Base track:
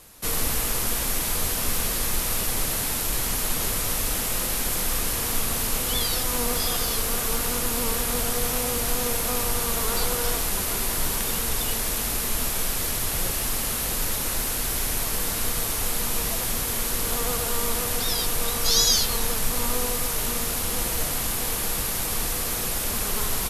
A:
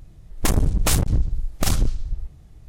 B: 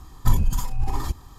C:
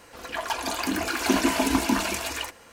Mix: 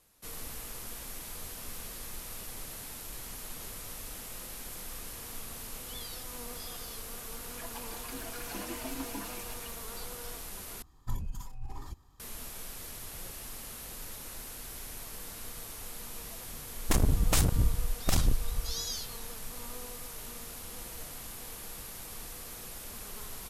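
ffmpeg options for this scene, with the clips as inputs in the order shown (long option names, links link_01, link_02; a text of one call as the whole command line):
ffmpeg -i bed.wav -i cue0.wav -i cue1.wav -i cue2.wav -filter_complex "[0:a]volume=-17dB[link_01];[3:a]asplit=2[link_02][link_03];[link_03]adelay=6.3,afreqshift=1.4[link_04];[link_02][link_04]amix=inputs=2:normalize=1[link_05];[link_01]asplit=2[link_06][link_07];[link_06]atrim=end=10.824[link_08];[2:a]atrim=end=1.38,asetpts=PTS-STARTPTS,volume=-16.5dB[link_09];[link_07]atrim=start=12.196[link_10];[link_05]atrim=end=2.72,asetpts=PTS-STARTPTS,volume=-15dB,afade=type=in:duration=0.004:curve=hsin,afade=type=out:start_time=2.716:duration=0.004:curve=hsin,adelay=7250[link_11];[1:a]atrim=end=2.68,asetpts=PTS-STARTPTS,volume=-6.5dB,afade=type=in:duration=0.004:curve=hsin,afade=type=out:start_time=2.676:duration=0.004:curve=hsin,adelay=16460[link_12];[link_08][link_09]acrossfade=duration=0.004:curve1=hsin:curve2=hsin[link_13];[link_13][link_10]acrossfade=duration=0.004:curve1=hsin:curve2=hsin[link_14];[link_14][link_11][link_12]amix=inputs=3:normalize=0" out.wav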